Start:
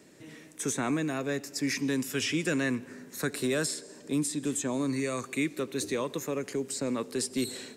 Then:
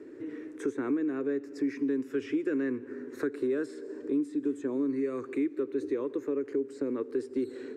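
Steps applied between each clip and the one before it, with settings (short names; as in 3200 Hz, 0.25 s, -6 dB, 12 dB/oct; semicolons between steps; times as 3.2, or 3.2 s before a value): EQ curve 120 Hz 0 dB, 180 Hz -13 dB, 280 Hz +13 dB, 430 Hz +14 dB, 660 Hz -4 dB, 1500 Hz +4 dB, 3100 Hz -10 dB, 12000 Hz -21 dB; compressor 2:1, threshold -36 dBFS, peak gain reduction 13 dB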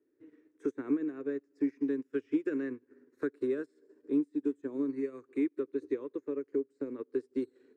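upward expander 2.5:1, over -45 dBFS; gain +1.5 dB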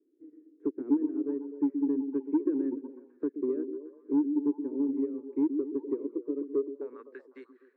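band-pass sweep 310 Hz -> 1700 Hz, 6.52–7.08; soft clip -22.5 dBFS, distortion -21 dB; delay with a stepping band-pass 0.125 s, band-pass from 260 Hz, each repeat 0.7 oct, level -6 dB; gain +5 dB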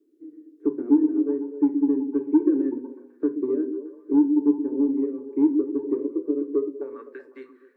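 reverb RT60 0.35 s, pre-delay 3 ms, DRR 5 dB; gain +5 dB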